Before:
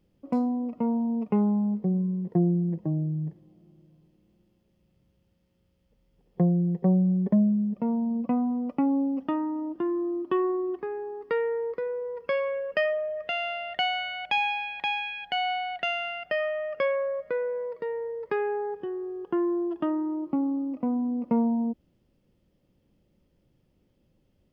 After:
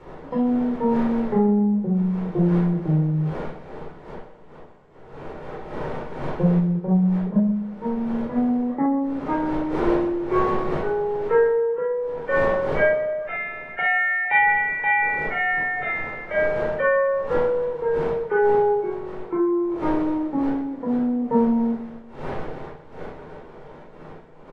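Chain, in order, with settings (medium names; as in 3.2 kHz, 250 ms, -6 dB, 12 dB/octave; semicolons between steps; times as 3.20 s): knee-point frequency compression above 1.2 kHz 1.5:1; wind noise 570 Hz -40 dBFS; peaking EQ 76 Hz -7.5 dB 2.4 oct; feedback delay 126 ms, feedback 47%, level -12.5 dB; reverberation, pre-delay 14 ms, DRR -3 dB; 6.60–8.38 s: upward expansion 1.5:1, over -27 dBFS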